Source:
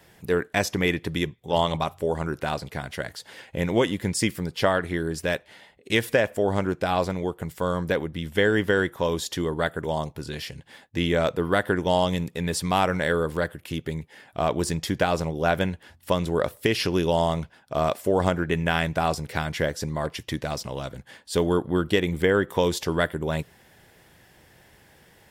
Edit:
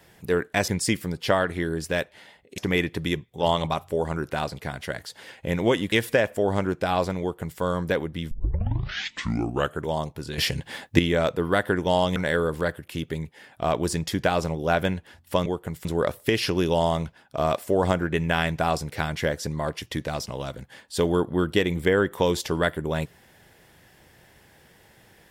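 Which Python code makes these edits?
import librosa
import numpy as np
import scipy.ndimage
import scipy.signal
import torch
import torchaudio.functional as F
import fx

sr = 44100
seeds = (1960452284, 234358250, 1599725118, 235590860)

y = fx.edit(x, sr, fx.move(start_s=4.02, length_s=1.9, to_s=0.68),
    fx.duplicate(start_s=7.21, length_s=0.39, to_s=16.22),
    fx.tape_start(start_s=8.31, length_s=1.54),
    fx.clip_gain(start_s=10.38, length_s=0.61, db=11.0),
    fx.cut(start_s=12.16, length_s=0.76), tone=tone)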